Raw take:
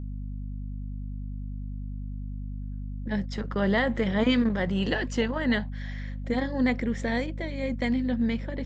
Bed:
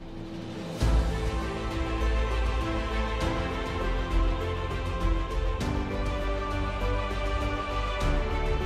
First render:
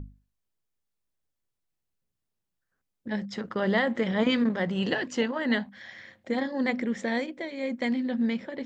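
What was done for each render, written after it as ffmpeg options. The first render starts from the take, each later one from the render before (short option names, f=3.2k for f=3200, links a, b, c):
-af "bandreject=f=50:t=h:w=6,bandreject=f=100:t=h:w=6,bandreject=f=150:t=h:w=6,bandreject=f=200:t=h:w=6,bandreject=f=250:t=h:w=6,bandreject=f=300:t=h:w=6"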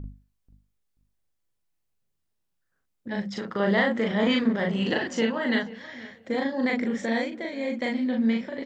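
-filter_complex "[0:a]asplit=2[a][b];[b]adelay=40,volume=-2dB[c];[a][c]amix=inputs=2:normalize=0,asplit=2[d][e];[e]adelay=485,lowpass=f=3.1k:p=1,volume=-18dB,asplit=2[f][g];[g]adelay=485,lowpass=f=3.1k:p=1,volume=0.2[h];[d][f][h]amix=inputs=3:normalize=0"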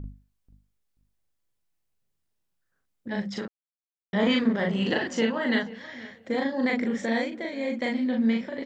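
-filter_complex "[0:a]asplit=3[a][b][c];[a]atrim=end=3.48,asetpts=PTS-STARTPTS,afade=t=out:st=3.476:d=0.004:c=hsin[d];[b]atrim=start=3.48:end=4.13,asetpts=PTS-STARTPTS,volume=0[e];[c]atrim=start=4.13,asetpts=PTS-STARTPTS,afade=t=in:d=0.004:c=hsin[f];[d][e][f]concat=n=3:v=0:a=1"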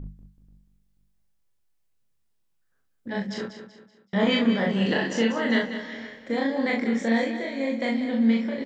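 -filter_complex "[0:a]asplit=2[a][b];[b]adelay=26,volume=-5dB[c];[a][c]amix=inputs=2:normalize=0,aecho=1:1:190|380|570|760:0.299|0.116|0.0454|0.0177"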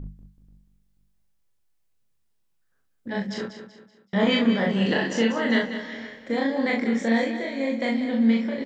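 -af "volume=1dB"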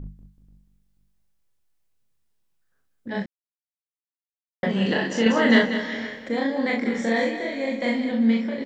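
-filter_complex "[0:a]asettb=1/sr,asplit=3[a][b][c];[a]atrim=end=5.264[d];[b]atrim=start=5.26:end=6.29,asetpts=PTS-STARTPTS,afade=t=in:d=0.004:c=qsin,afade=t=out:st=1.026:d=0.004:c=qsin,acontrast=48[e];[c]atrim=start=6.286[f];[d][e]acrossfade=d=0.004:c1=hsin:c2=qsin[g];[g][f]acrossfade=d=0.004:c1=qsin:c2=hsin,asettb=1/sr,asplit=3[h][i][j];[h]atrim=end=6.814[k];[i]atrim=start=6.81:end=8.12,asetpts=PTS-STARTPTS,afade=t=in:d=0.004:c=qsin,afade=t=out:st=1.306:d=0.004:c=qsin,asplit=2[l][m];[m]adelay=46,volume=-4dB[n];[l][n]amix=inputs=2:normalize=0,atrim=end_sample=57771[o];[j]atrim=start=8.116[p];[k][o]acrossfade=d=0.004:c1=hsin:c2=qsin[q];[q][p]acrossfade=d=0.004:c1=qsin:c2=hsin,asplit=3[r][s][t];[r]atrim=end=3.26,asetpts=PTS-STARTPTS,afade=t=out:st=3.256:d=0.004:c=hsin[u];[s]atrim=start=3.26:end=4.63,asetpts=PTS-STARTPTS,volume=0[v];[t]atrim=start=4.63,asetpts=PTS-STARTPTS,afade=t=in:d=0.004:c=hsin[w];[u][v][w]concat=n=3:v=0:a=1"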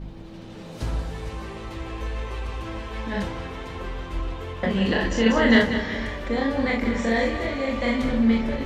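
-filter_complex "[1:a]volume=-3.5dB[a];[0:a][a]amix=inputs=2:normalize=0"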